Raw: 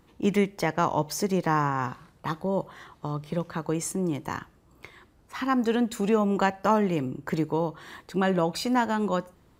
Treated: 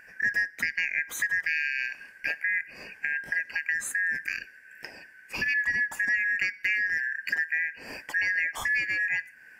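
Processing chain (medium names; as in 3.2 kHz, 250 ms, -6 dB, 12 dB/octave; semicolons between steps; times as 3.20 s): four frequency bands reordered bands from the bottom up 3142; graphic EQ 250/500/2000/4000 Hz +7/+4/+4/-12 dB; compression 2.5:1, threshold -36 dBFS, peak gain reduction 13.5 dB; trim +6.5 dB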